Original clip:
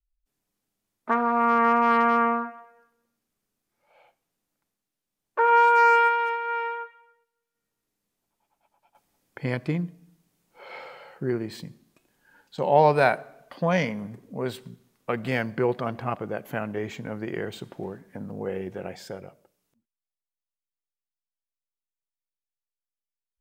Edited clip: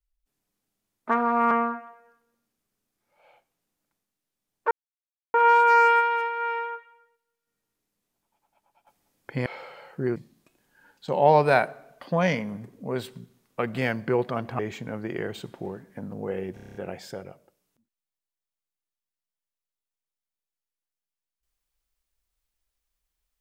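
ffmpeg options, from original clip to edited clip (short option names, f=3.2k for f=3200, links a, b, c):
-filter_complex "[0:a]asplit=13[a][b][c][d][e][f][g][h][i][j][k][l][m];[a]atrim=end=1.512[n];[b]atrim=start=2.218:end=5.42,asetpts=PTS-STARTPTS,afade=t=out:st=3.198:d=0.004:c=hsin,apad=pad_dur=0.63[o];[c]atrim=start=5.42:end=9.542,asetpts=PTS-STARTPTS,afade=t=in:d=0.004:c=hsin[p];[d]atrim=start=10.688:end=11.392[q];[e]atrim=start=11.658:end=16.092[r];[f]atrim=start=16.768:end=18.752[s];[g]atrim=start=18.718:end=18.752[t];[h]atrim=start=18.718:end=18.752[u];[i]atrim=start=18.718:end=18.752[v];[j]atrim=start=18.718:end=18.752[w];[k]atrim=start=18.718:end=18.752[x];[l]atrim=start=18.718:end=18.752[y];[m]atrim=start=18.718[z];[o][p]concat=n=2:v=0:a=1[aa];[n][aa]acrossfade=d=0.004:c1=hsin:c2=hsin[ab];[ab][q]acrossfade=d=0.004:c1=hsin:c2=hsin[ac];[ac][r]acrossfade=d=0.004:c1=hsin:c2=hsin[ad];[ad][s]acrossfade=d=0.004:c1=hsin:c2=hsin[ae];[ae][t]acrossfade=d=0.004:c1=hsin:c2=hsin[af];[af][u]acrossfade=d=0.004:c1=hsin:c2=hsin[ag];[ag][v]acrossfade=d=0.004:c1=hsin:c2=hsin[ah];[ah][w]acrossfade=d=0.004:c1=hsin:c2=hsin[ai];[ai][x]acrossfade=d=0.004:c1=hsin:c2=hsin[aj];[aj][y]acrossfade=d=0.004:c1=hsin:c2=hsin[ak];[ak][z]acrossfade=d=0.004:c1=hsin:c2=hsin"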